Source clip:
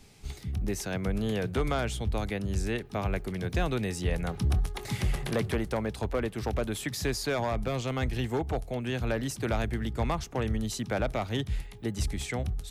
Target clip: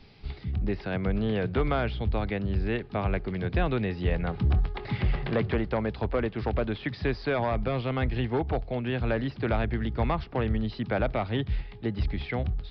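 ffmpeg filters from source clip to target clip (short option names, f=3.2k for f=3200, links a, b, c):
-filter_complex "[0:a]acrossover=split=3400[a][b];[b]acompressor=threshold=-56dB:ratio=4:attack=1:release=60[c];[a][c]amix=inputs=2:normalize=0,aresample=11025,aresample=44100,volume=2.5dB"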